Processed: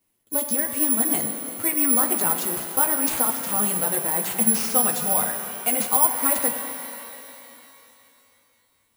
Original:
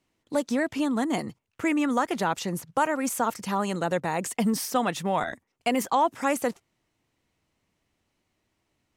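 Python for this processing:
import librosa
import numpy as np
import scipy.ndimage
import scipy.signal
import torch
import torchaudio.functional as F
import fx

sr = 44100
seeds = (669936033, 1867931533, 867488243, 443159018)

y = fx.chorus_voices(x, sr, voices=2, hz=1.2, base_ms=11, depth_ms=3.0, mix_pct=40)
y = (np.kron(y[::4], np.eye(4)[0]) * 4)[:len(y)]
y = fx.rev_shimmer(y, sr, seeds[0], rt60_s=3.0, semitones=12, shimmer_db=-8, drr_db=5.5)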